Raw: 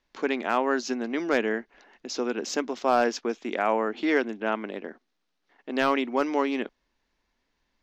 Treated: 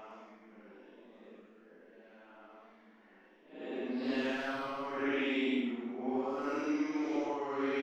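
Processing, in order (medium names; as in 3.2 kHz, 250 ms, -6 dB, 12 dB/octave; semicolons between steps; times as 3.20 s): compressor with a negative ratio -26 dBFS, ratio -0.5; feedback delay 467 ms, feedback 45%, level -19 dB; Paulstretch 5.3×, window 0.10 s, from 4.99 s; modulated delay 107 ms, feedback 36%, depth 69 cents, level -7.5 dB; trim -7 dB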